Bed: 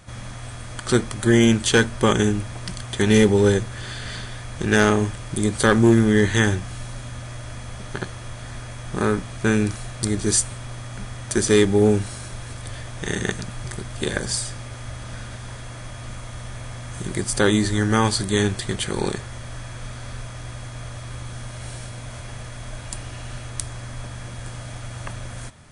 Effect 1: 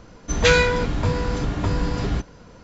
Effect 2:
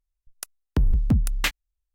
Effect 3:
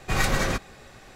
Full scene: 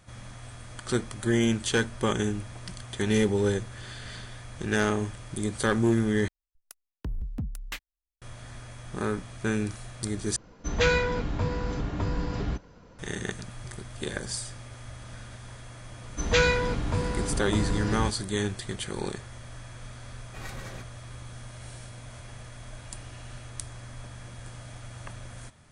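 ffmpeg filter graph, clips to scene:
ffmpeg -i bed.wav -i cue0.wav -i cue1.wav -i cue2.wav -filter_complex "[1:a]asplit=2[link_01][link_02];[0:a]volume=-8.5dB[link_03];[link_01]highshelf=frequency=3600:gain=-4.5[link_04];[link_03]asplit=3[link_05][link_06][link_07];[link_05]atrim=end=6.284[link_08];[2:a]atrim=end=1.94,asetpts=PTS-STARTPTS,volume=-13dB[link_09];[link_06]atrim=start=8.216:end=10.364[link_10];[link_04]atrim=end=2.63,asetpts=PTS-STARTPTS,volume=-6.5dB[link_11];[link_07]atrim=start=12.986[link_12];[link_02]atrim=end=2.63,asetpts=PTS-STARTPTS,volume=-6dB,afade=type=in:duration=0.004:curve=hsin,afade=type=out:start_time=2.626:duration=0.004:curve=hsin,adelay=15890[link_13];[3:a]atrim=end=1.15,asetpts=PTS-STARTPTS,volume=-17.5dB,afade=type=in:duration=0.004:curve=hsin,afade=type=out:start_time=1.146:duration=0.004:curve=hsin,adelay=20250[link_14];[link_08][link_09]acrossfade=duration=0.004:curve1=hsin:curve2=hsin[link_15];[link_15][link_10]acrossfade=duration=0.004:curve1=hsin:curve2=hsin[link_16];[link_16][link_11]acrossfade=duration=0.004:curve1=hsin:curve2=hsin[link_17];[link_17][link_12]acrossfade=duration=0.004:curve1=hsin:curve2=hsin[link_18];[link_18][link_13][link_14]amix=inputs=3:normalize=0" out.wav

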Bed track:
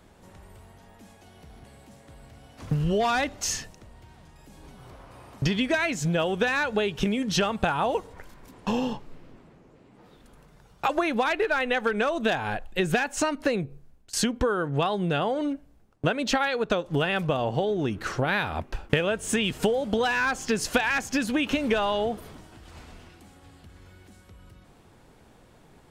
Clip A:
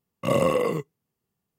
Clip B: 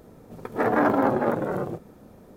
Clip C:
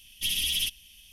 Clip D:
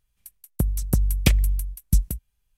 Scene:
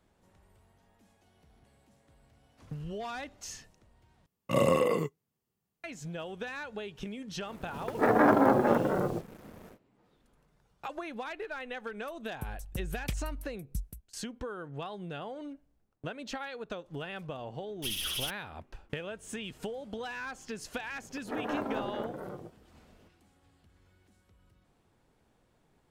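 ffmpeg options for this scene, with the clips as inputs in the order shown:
ffmpeg -i bed.wav -i cue0.wav -i cue1.wav -i cue2.wav -i cue3.wav -filter_complex "[2:a]asplit=2[link_01][link_02];[0:a]volume=-14.5dB[link_03];[link_01]acrusher=bits=7:mix=0:aa=0.5[link_04];[3:a]aeval=exprs='val(0)*gte(abs(val(0)),0.0158)':channel_layout=same[link_05];[link_03]asplit=2[link_06][link_07];[link_06]atrim=end=4.264[link_08];[1:a]atrim=end=1.58,asetpts=PTS-STARTPTS,volume=-3.5dB[link_09];[link_07]atrim=start=5.836[link_10];[link_04]atrim=end=2.36,asetpts=PTS-STARTPTS,volume=-1.5dB,afade=type=in:duration=0.1,afade=type=out:start_time=2.26:duration=0.1,adelay=7430[link_11];[4:a]atrim=end=2.57,asetpts=PTS-STARTPTS,volume=-17dB,afade=type=in:duration=0.004:curve=hsin,afade=type=out:start_time=2.566:duration=0.004:curve=hsin,adelay=11820[link_12];[link_05]atrim=end=1.12,asetpts=PTS-STARTPTS,volume=-7dB,afade=type=in:duration=0.004:curve=hsin,afade=type=out:start_time=1.116:duration=0.004:curve=hsin,adelay=17610[link_13];[link_02]atrim=end=2.36,asetpts=PTS-STARTPTS,volume=-14dB,afade=type=in:duration=0.004:curve=hsin,afade=type=out:start_time=2.356:duration=0.004:curve=hsin,adelay=20720[link_14];[link_08][link_09]acrossfade=duration=0.004:curve1=hsin:curve2=hsin[link_15];[link_15][link_10]acrossfade=duration=0.004:curve1=hsin:curve2=hsin[link_16];[link_16][link_11][link_12][link_13][link_14]amix=inputs=5:normalize=0" out.wav

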